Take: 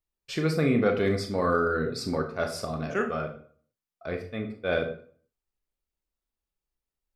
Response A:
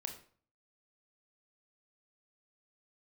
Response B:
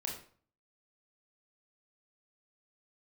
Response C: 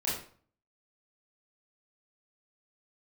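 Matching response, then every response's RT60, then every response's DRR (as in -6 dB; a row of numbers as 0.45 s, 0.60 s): A; 0.45 s, 0.45 s, 0.45 s; 3.5 dB, -1.5 dB, -8.5 dB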